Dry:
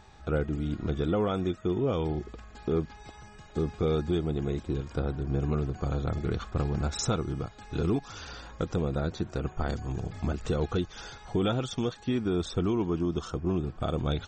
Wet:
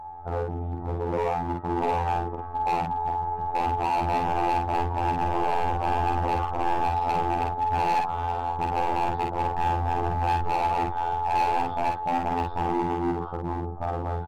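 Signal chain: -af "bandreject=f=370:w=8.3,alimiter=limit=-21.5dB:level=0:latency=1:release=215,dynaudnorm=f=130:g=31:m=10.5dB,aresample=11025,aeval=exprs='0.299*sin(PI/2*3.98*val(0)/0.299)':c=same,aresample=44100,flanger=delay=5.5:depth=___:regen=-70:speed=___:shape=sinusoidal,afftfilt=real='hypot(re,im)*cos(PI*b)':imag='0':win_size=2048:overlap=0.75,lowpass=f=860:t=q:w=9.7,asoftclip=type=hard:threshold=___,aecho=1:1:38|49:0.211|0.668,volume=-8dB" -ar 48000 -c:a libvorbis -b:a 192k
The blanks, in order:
9, 0.75, -13.5dB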